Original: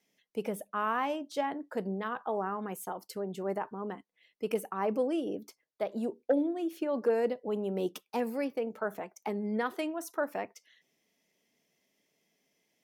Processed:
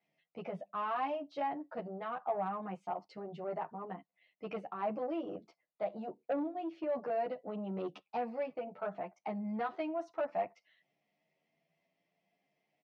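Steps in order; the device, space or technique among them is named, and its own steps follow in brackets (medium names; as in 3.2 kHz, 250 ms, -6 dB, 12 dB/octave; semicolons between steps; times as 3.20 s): 8.38–9.01 s: peaking EQ 6.2 kHz -5.5 dB 0.8 oct; barber-pole flanger into a guitar amplifier (endless flanger 10.5 ms +0.62 Hz; saturation -28.5 dBFS, distortion -15 dB; cabinet simulation 87–3800 Hz, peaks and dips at 160 Hz +7 dB, 240 Hz -7 dB, 420 Hz -8 dB, 700 Hz +8 dB, 1.6 kHz -5 dB, 3.4 kHz -7 dB)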